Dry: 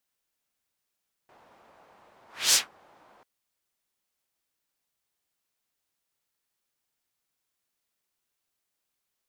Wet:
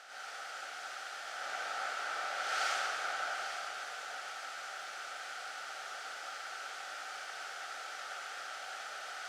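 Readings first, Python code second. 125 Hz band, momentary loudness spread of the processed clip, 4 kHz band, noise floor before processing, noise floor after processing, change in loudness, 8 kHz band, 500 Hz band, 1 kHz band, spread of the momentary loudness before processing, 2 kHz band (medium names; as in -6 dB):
no reading, 8 LU, -7.5 dB, -83 dBFS, -46 dBFS, -16.0 dB, -13.0 dB, +8.0 dB, +12.5 dB, 13 LU, +6.0 dB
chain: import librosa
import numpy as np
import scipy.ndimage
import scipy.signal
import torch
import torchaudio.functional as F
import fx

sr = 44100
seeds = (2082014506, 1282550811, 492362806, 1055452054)

y = fx.bin_compress(x, sr, power=0.2)
y = fx.double_bandpass(y, sr, hz=1000.0, octaves=0.82)
y = y + 10.0 ** (-10.0 / 20.0) * np.pad(y, (int(830 * sr / 1000.0), 0))[:len(y)]
y = fx.rev_plate(y, sr, seeds[0], rt60_s=1.8, hf_ratio=0.95, predelay_ms=80, drr_db=-9.0)
y = y * librosa.db_to_amplitude(-4.0)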